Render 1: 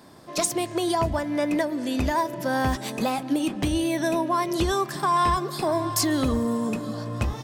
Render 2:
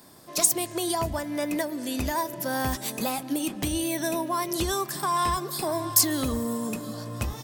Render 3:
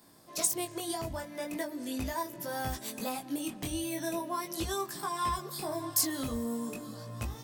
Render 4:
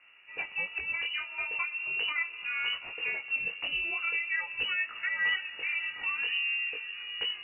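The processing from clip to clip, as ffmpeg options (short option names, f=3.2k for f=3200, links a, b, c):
-af "aemphasis=mode=production:type=50fm,volume=-4dB"
-af "flanger=delay=17.5:depth=4.5:speed=0.4,volume=-4.5dB"
-af "lowpass=f=2.6k:t=q:w=0.5098,lowpass=f=2.6k:t=q:w=0.6013,lowpass=f=2.6k:t=q:w=0.9,lowpass=f=2.6k:t=q:w=2.563,afreqshift=-3000,volume=3dB"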